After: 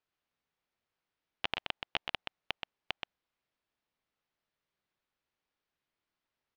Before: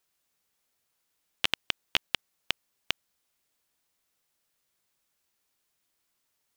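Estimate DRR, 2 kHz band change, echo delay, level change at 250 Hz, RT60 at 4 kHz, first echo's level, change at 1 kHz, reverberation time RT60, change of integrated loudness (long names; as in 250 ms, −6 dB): no reverb audible, −6.0 dB, 126 ms, −4.5 dB, no reverb audible, −5.5 dB, −1.0 dB, no reverb audible, −7.5 dB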